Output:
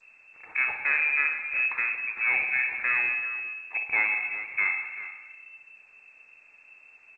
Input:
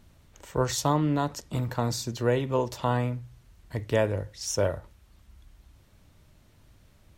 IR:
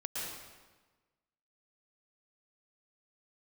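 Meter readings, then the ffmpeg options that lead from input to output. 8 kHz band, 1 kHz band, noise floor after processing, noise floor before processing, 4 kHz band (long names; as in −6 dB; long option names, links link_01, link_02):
below −35 dB, −7.0 dB, −56 dBFS, −59 dBFS, below −20 dB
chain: -filter_complex "[0:a]adynamicequalizer=threshold=0.0158:dfrequency=350:dqfactor=0.96:tfrequency=350:tqfactor=0.96:attack=5:release=100:ratio=0.375:range=2:mode=cutabove:tftype=bell,asoftclip=type=tanh:threshold=-20.5dB,aecho=1:1:56|382|399:0.355|0.168|0.188,asplit=2[link_01][link_02];[1:a]atrim=start_sample=2205,asetrate=48510,aresample=44100,lowpass=8300[link_03];[link_02][link_03]afir=irnorm=-1:irlink=0,volume=-7.5dB[link_04];[link_01][link_04]amix=inputs=2:normalize=0,lowpass=frequency=2300:width_type=q:width=0.5098,lowpass=frequency=2300:width_type=q:width=0.6013,lowpass=frequency=2300:width_type=q:width=0.9,lowpass=frequency=2300:width_type=q:width=2.563,afreqshift=-2700" -ar 16000 -c:a g722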